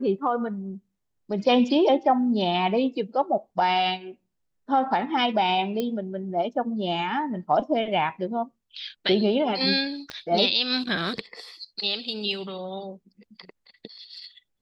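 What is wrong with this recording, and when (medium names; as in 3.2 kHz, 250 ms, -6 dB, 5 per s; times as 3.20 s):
5.80 s: pop -15 dBFS
10.10 s: pop -20 dBFS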